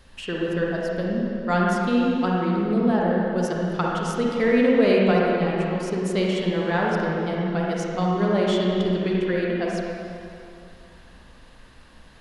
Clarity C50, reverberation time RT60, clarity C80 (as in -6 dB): -3.0 dB, 2.7 s, -1.0 dB